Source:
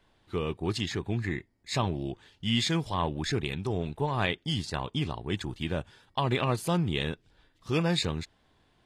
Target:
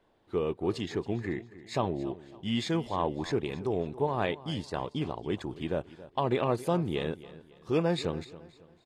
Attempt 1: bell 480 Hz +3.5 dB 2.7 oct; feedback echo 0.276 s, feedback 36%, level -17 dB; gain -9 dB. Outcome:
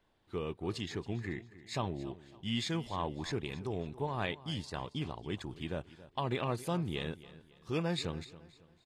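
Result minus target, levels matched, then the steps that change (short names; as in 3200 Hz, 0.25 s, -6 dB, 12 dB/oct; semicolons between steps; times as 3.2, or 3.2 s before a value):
500 Hz band -3.0 dB
change: bell 480 Hz +12.5 dB 2.7 oct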